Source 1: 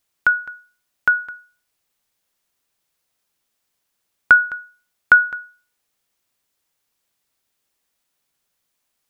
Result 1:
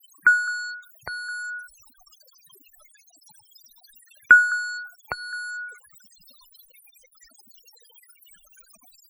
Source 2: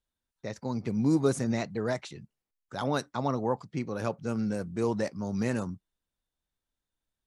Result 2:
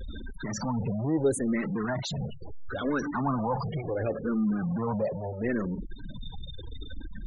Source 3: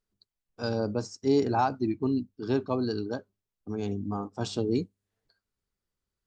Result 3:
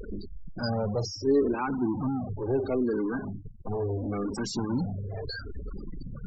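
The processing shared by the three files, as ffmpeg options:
-filter_complex "[0:a]aeval=exprs='val(0)+0.5*0.0708*sgn(val(0))':c=same,afftfilt=real='re*gte(hypot(re,im),0.0562)':imag='im*gte(hypot(re,im),0.0562)':win_size=1024:overlap=0.75,asplit=2[a][b];[b]afreqshift=-0.73[c];[a][c]amix=inputs=2:normalize=1,volume=-1dB"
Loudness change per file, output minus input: -5.0, +0.5, 0.0 LU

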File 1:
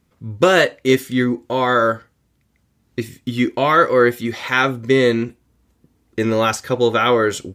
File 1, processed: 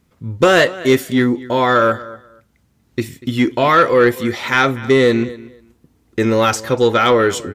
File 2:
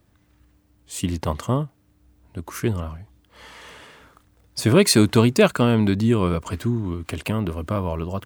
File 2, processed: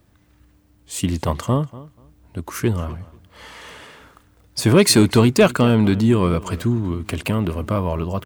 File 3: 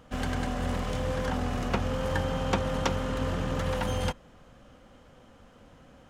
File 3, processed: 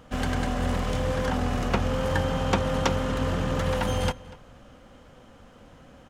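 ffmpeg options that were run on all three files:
-filter_complex "[0:a]asplit=2[a][b];[b]adelay=241,lowpass=f=4.8k:p=1,volume=-19.5dB,asplit=2[c][d];[d]adelay=241,lowpass=f=4.8k:p=1,volume=0.19[e];[a][c][e]amix=inputs=3:normalize=0,acontrast=39,volume=-2dB"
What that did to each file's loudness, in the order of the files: +2.0, +2.5, +3.5 LU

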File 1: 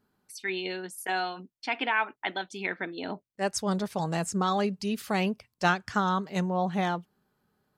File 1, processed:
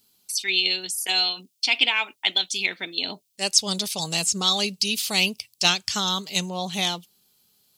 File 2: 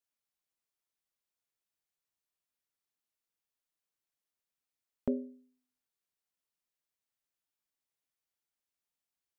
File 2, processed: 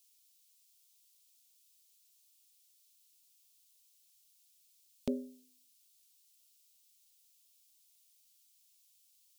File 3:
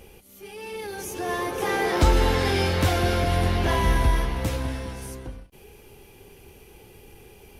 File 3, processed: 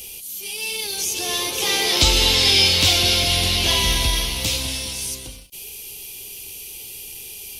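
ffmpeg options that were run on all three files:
-filter_complex "[0:a]aexciter=amount=10.9:drive=6.3:freq=2.5k,acrossover=split=5500[a][b];[b]acompressor=threshold=-25dB:ratio=4:attack=1:release=60[c];[a][c]amix=inputs=2:normalize=0,volume=-2.5dB"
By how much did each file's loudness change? +7.5, -4.0, +7.0 LU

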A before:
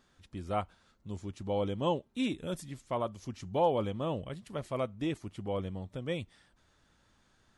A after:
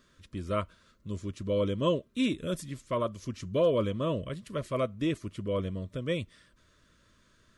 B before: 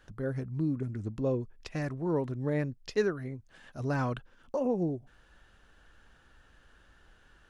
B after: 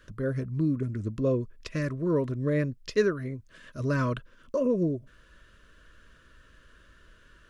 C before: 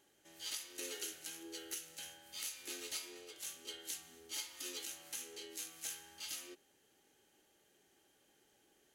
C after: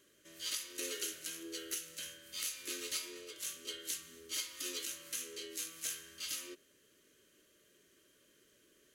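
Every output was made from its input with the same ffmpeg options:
-af "asuperstop=centerf=800:order=12:qfactor=2.8,volume=4dB"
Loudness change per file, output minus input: +3.5, +4.0, +4.0 LU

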